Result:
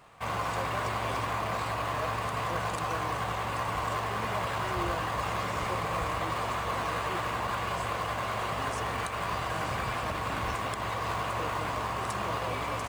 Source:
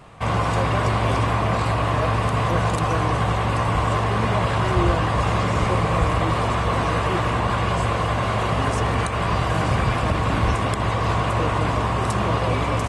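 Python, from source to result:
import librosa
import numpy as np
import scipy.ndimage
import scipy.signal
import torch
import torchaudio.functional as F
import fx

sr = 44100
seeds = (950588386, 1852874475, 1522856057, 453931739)

p1 = fx.low_shelf(x, sr, hz=480.0, db=-12.0)
p2 = fx.sample_hold(p1, sr, seeds[0], rate_hz=5600.0, jitter_pct=20)
p3 = p1 + (p2 * librosa.db_to_amplitude(-10.0))
y = p3 * librosa.db_to_amplitude(-7.5)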